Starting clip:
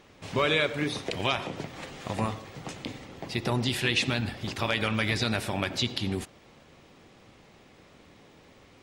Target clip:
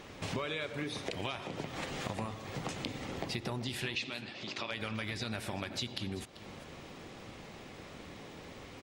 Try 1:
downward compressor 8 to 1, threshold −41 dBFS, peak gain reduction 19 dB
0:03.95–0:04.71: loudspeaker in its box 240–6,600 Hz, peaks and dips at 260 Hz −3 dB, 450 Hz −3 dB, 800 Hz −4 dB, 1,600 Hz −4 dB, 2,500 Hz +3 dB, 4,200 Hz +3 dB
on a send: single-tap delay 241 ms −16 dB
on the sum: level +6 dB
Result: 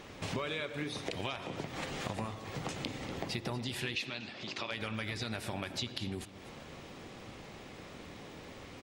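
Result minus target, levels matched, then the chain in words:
echo 149 ms early
downward compressor 8 to 1, threshold −41 dBFS, peak gain reduction 19 dB
0:03.95–0:04.71: loudspeaker in its box 240–6,600 Hz, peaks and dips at 260 Hz −3 dB, 450 Hz −3 dB, 800 Hz −4 dB, 1,600 Hz −4 dB, 2,500 Hz +3 dB, 4,200 Hz +3 dB
on a send: single-tap delay 390 ms −16 dB
on the sum: level +6 dB

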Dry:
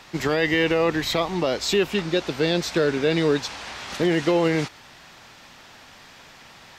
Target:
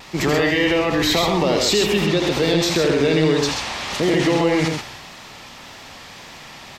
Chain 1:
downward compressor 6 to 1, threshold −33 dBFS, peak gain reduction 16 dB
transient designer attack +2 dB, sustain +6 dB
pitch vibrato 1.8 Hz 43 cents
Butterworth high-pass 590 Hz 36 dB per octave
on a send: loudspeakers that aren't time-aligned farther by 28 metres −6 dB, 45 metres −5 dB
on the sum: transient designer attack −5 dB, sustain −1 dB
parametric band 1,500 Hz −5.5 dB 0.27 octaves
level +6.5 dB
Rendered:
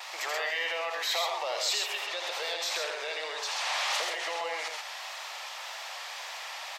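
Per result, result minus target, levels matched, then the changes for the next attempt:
downward compressor: peak gain reduction +9.5 dB; 500 Hz band −4.5 dB
change: downward compressor 6 to 1, threshold −21.5 dBFS, peak gain reduction 6.5 dB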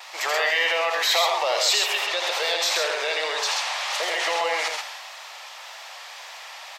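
500 Hz band −5.0 dB
remove: Butterworth high-pass 590 Hz 36 dB per octave

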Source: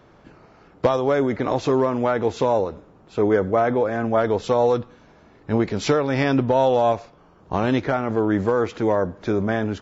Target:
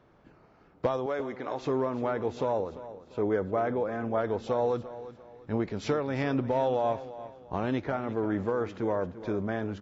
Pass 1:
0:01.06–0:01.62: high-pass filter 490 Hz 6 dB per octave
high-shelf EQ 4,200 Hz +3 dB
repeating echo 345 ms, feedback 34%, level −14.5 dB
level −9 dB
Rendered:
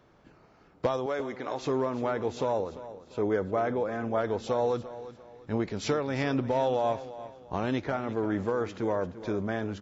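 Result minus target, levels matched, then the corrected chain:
8,000 Hz band +7.0 dB
0:01.06–0:01.62: high-pass filter 490 Hz 6 dB per octave
high-shelf EQ 4,200 Hz −7 dB
repeating echo 345 ms, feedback 34%, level −14.5 dB
level −9 dB

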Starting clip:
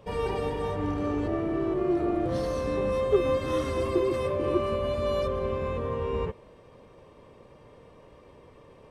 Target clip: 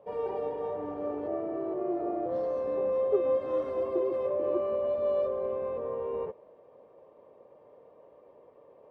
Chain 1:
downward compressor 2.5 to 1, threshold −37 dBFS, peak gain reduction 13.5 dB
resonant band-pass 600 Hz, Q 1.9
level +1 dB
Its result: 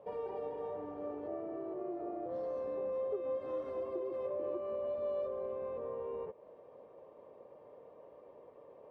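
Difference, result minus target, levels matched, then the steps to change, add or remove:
downward compressor: peak gain reduction +13.5 dB
remove: downward compressor 2.5 to 1, threshold −37 dBFS, peak gain reduction 13.5 dB

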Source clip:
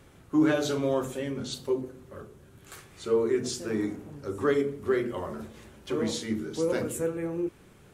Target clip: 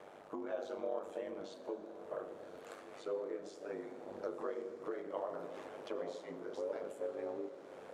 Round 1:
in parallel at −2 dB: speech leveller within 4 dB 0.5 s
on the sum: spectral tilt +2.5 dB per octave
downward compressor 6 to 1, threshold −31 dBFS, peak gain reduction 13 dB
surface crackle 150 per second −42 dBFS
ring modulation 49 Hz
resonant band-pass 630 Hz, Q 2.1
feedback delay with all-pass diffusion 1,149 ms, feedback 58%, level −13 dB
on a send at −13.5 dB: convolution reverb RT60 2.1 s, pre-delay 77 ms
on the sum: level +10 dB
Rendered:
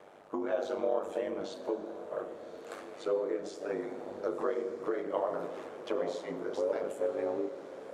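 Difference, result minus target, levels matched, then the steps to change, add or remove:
downward compressor: peak gain reduction −8.5 dB
change: downward compressor 6 to 1, threshold −41 dBFS, peak gain reduction 21.5 dB

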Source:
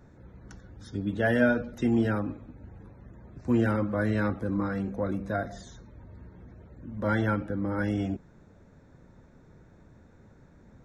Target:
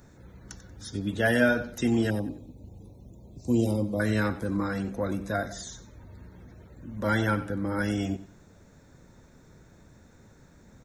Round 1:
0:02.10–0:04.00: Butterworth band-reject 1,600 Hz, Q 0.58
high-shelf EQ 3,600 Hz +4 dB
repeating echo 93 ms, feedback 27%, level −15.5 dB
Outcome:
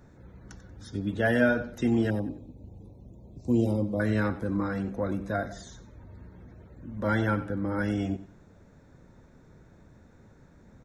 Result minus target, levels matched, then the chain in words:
8,000 Hz band −9.0 dB
0:02.10–0:04.00: Butterworth band-reject 1,600 Hz, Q 0.58
high-shelf EQ 3,600 Hz +16 dB
repeating echo 93 ms, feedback 27%, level −15.5 dB

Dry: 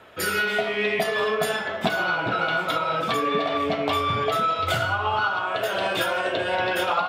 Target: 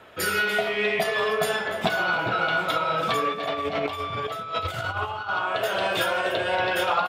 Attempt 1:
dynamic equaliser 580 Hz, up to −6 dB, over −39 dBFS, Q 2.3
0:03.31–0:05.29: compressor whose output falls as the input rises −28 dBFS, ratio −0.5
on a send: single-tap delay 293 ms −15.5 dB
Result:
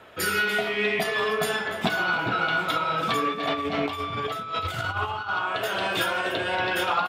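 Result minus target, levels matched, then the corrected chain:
250 Hz band +3.0 dB
dynamic equaliser 260 Hz, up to −6 dB, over −39 dBFS, Q 2.3
0:03.31–0:05.29: compressor whose output falls as the input rises −28 dBFS, ratio −0.5
on a send: single-tap delay 293 ms −15.5 dB

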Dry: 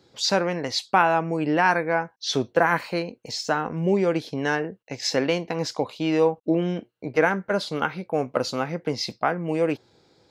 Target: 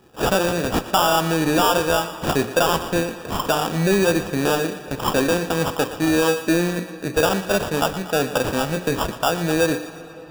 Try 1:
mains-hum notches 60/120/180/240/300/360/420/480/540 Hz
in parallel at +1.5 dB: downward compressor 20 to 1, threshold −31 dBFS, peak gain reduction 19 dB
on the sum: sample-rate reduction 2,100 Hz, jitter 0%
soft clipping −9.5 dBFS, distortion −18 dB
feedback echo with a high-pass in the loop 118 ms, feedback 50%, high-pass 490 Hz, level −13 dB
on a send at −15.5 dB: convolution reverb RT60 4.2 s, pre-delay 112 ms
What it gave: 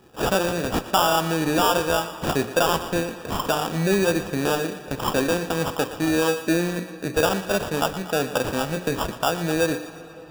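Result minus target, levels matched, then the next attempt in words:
downward compressor: peak gain reduction +11 dB
mains-hum notches 60/120/180/240/300/360/420/480/540 Hz
in parallel at +1.5 dB: downward compressor 20 to 1, threshold −19.5 dBFS, peak gain reduction 8 dB
on the sum: sample-rate reduction 2,100 Hz, jitter 0%
soft clipping −9.5 dBFS, distortion −15 dB
feedback echo with a high-pass in the loop 118 ms, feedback 50%, high-pass 490 Hz, level −13 dB
on a send at −15.5 dB: convolution reverb RT60 4.2 s, pre-delay 112 ms

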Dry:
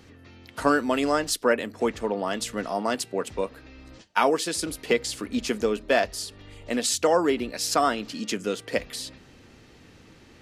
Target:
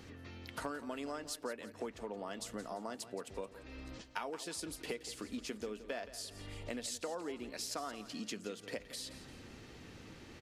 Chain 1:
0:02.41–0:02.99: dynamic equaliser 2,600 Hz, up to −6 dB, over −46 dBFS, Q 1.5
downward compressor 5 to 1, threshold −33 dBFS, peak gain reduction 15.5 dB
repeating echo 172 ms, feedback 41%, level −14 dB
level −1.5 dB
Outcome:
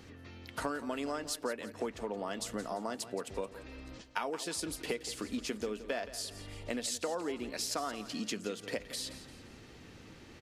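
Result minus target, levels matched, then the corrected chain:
downward compressor: peak gain reduction −5 dB
0:02.41–0:02.99: dynamic equaliser 2,600 Hz, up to −6 dB, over −46 dBFS, Q 1.5
downward compressor 5 to 1, threshold −39.5 dBFS, peak gain reduction 20.5 dB
repeating echo 172 ms, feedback 41%, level −14 dB
level −1.5 dB

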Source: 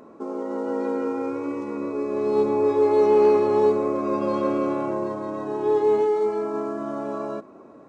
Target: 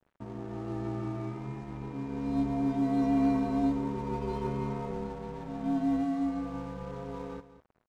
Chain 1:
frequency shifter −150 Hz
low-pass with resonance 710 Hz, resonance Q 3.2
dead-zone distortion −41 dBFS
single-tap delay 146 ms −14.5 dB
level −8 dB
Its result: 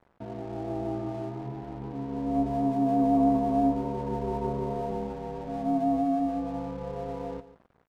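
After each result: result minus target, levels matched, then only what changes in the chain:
echo 54 ms early; 1,000 Hz band +4.5 dB
change: single-tap delay 200 ms −14.5 dB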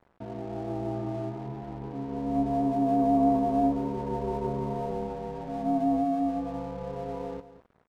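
1,000 Hz band +5.0 dB
remove: low-pass with resonance 710 Hz, resonance Q 3.2

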